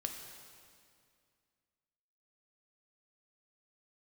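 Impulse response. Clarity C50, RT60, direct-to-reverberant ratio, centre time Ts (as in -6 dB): 5.0 dB, 2.2 s, 3.0 dB, 54 ms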